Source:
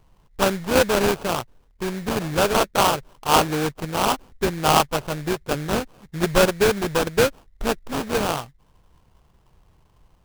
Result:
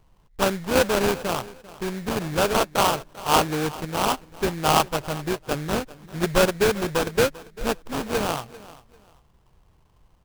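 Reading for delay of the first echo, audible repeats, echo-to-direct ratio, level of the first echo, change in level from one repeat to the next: 394 ms, 2, −19.0 dB, −19.0 dB, −12.0 dB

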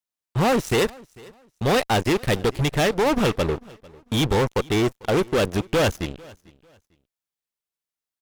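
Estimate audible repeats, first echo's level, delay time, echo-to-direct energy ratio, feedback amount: 1, −24.0 dB, 447 ms, −23.5 dB, repeats not evenly spaced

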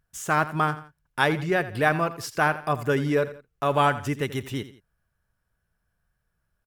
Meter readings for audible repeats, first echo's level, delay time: 2, −15.0 dB, 85 ms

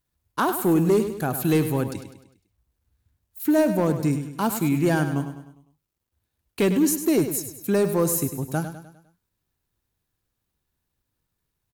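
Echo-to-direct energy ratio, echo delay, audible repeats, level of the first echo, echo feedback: −9.0 dB, 101 ms, 4, −10.0 dB, 46%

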